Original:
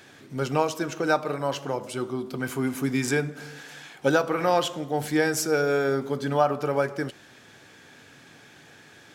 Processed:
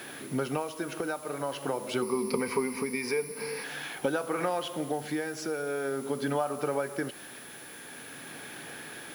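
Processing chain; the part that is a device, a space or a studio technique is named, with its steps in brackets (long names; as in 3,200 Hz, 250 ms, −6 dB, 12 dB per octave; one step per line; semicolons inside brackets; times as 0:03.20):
medium wave at night (band-pass filter 170–4,200 Hz; downward compressor 10 to 1, threshold −34 dBFS, peak gain reduction 18.5 dB; amplitude tremolo 0.46 Hz, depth 38%; steady tone 10,000 Hz −57 dBFS; white noise bed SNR 20 dB)
0:02.02–0:03.64: EQ curve with evenly spaced ripples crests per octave 0.87, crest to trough 15 dB
level +8 dB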